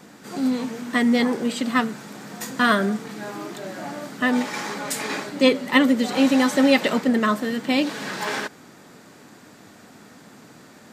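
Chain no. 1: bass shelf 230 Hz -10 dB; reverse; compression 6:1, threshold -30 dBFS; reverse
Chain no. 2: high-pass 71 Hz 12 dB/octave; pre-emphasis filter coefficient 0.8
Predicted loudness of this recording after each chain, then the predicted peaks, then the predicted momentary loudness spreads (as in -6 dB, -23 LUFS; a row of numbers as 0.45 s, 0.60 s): -33.5 LUFS, -33.0 LUFS; -17.5 dBFS, -13.0 dBFS; 17 LU, 14 LU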